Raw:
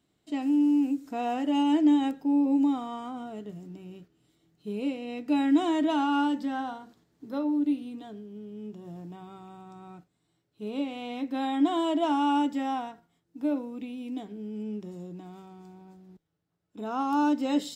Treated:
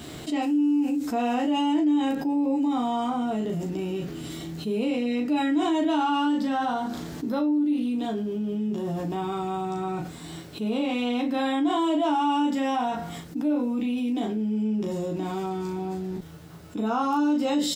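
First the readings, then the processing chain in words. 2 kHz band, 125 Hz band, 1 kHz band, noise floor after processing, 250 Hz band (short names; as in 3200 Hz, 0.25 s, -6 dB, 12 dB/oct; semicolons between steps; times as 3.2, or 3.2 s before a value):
+5.0 dB, +12.0 dB, +4.0 dB, -40 dBFS, +2.5 dB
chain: early reflections 13 ms -4 dB, 37 ms -4 dB; fast leveller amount 70%; gain -7.5 dB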